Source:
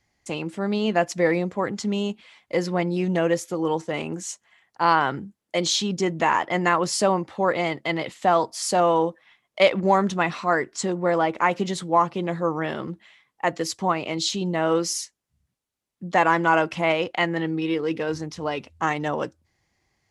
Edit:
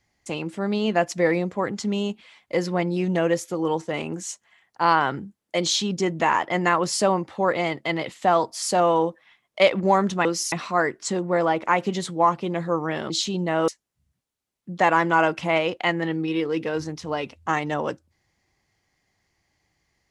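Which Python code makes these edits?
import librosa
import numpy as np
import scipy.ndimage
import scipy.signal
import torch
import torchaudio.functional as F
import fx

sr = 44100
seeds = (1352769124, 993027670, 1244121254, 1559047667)

y = fx.edit(x, sr, fx.cut(start_s=12.83, length_s=1.34),
    fx.move(start_s=14.75, length_s=0.27, to_s=10.25), tone=tone)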